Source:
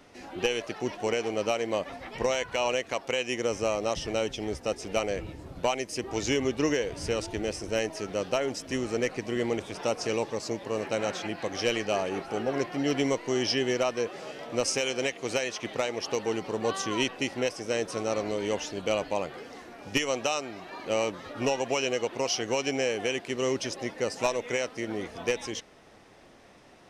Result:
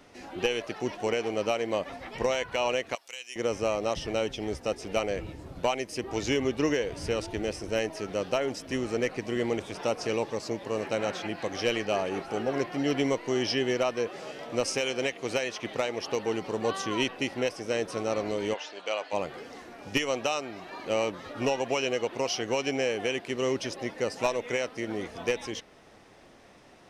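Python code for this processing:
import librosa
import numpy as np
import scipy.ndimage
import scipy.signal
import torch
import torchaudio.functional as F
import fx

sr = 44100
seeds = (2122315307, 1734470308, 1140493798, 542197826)

y = fx.differentiator(x, sr, at=(2.95, 3.36))
y = fx.bandpass_edges(y, sr, low_hz=640.0, high_hz=fx.line((18.53, 4400.0), (19.12, 7600.0)), at=(18.53, 19.12), fade=0.02)
y = fx.dynamic_eq(y, sr, hz=7100.0, q=1.3, threshold_db=-48.0, ratio=4.0, max_db=-5)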